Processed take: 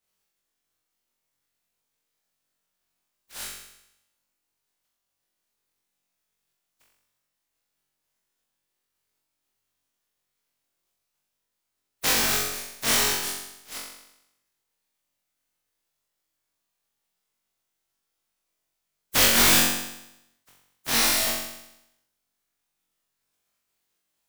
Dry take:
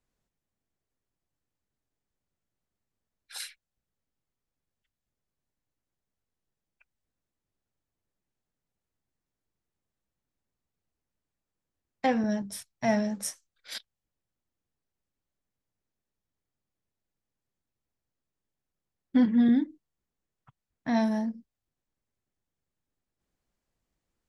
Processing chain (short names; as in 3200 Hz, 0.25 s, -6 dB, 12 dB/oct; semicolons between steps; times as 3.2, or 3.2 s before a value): spectral contrast lowered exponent 0.12; flutter echo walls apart 3.7 m, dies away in 0.85 s; gain -1 dB